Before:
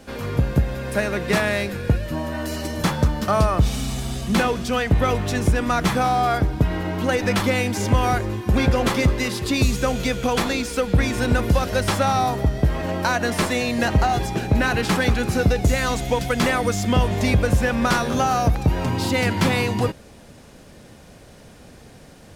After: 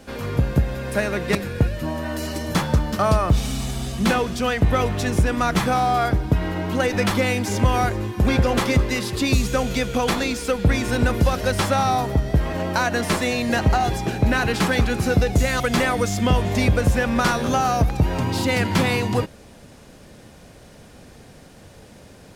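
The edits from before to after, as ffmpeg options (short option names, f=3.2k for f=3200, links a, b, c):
-filter_complex "[0:a]asplit=3[a][b][c];[a]atrim=end=1.352[d];[b]atrim=start=1.638:end=15.892[e];[c]atrim=start=16.258[f];[d][e]acrossfade=d=0.004:c1=hsin:c2=hsin[g];[g][f]acrossfade=d=0.004:c1=hsin:c2=hsin"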